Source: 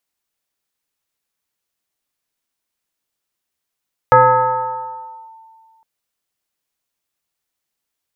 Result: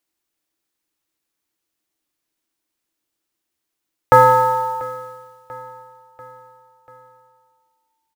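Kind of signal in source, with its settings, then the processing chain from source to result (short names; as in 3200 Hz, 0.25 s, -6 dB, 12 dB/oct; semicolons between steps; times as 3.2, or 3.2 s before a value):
FM tone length 1.71 s, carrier 895 Hz, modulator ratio 0.43, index 1.3, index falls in 1.22 s linear, decay 2.11 s, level -4 dB
bell 320 Hz +13.5 dB 0.29 oct; modulation noise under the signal 27 dB; feedback echo 0.69 s, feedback 55%, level -20 dB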